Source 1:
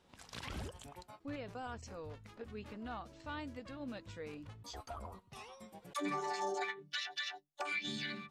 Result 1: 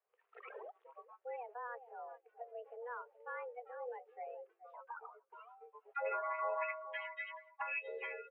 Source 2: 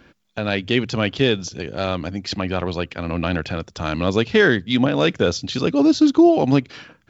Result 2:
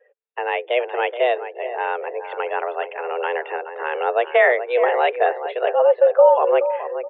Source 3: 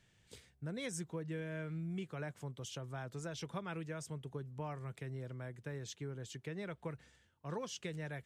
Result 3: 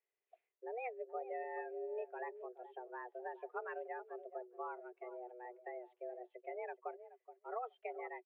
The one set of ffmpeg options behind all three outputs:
-filter_complex "[0:a]asplit=2[a][b];[b]adelay=424,lowpass=f=2k:p=1,volume=-10dB,asplit=2[c][d];[d]adelay=424,lowpass=f=2k:p=1,volume=0.31,asplit=2[e][f];[f]adelay=424,lowpass=f=2k:p=1,volume=0.31[g];[a][c][e][g]amix=inputs=4:normalize=0,highpass=f=170:t=q:w=0.5412,highpass=f=170:t=q:w=1.307,lowpass=f=2.5k:t=q:w=0.5176,lowpass=f=2.5k:t=q:w=0.7071,lowpass=f=2.5k:t=q:w=1.932,afreqshift=240,afftdn=nr=21:nf=-43"

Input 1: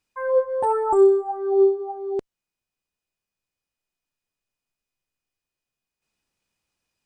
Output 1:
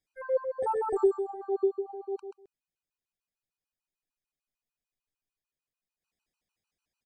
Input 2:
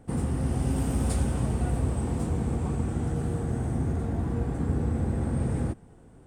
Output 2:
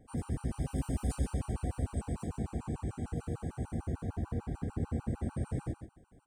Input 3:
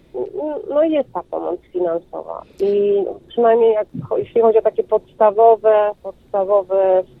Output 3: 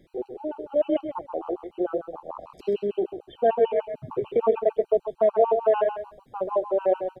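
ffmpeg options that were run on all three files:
-af "aecho=1:1:132|264:0.376|0.0601,afftfilt=real='re*gt(sin(2*PI*6.7*pts/sr)*(1-2*mod(floor(b*sr/1024/780),2)),0)':imag='im*gt(sin(2*PI*6.7*pts/sr)*(1-2*mod(floor(b*sr/1024/780),2)),0)':win_size=1024:overlap=0.75,volume=-6dB"

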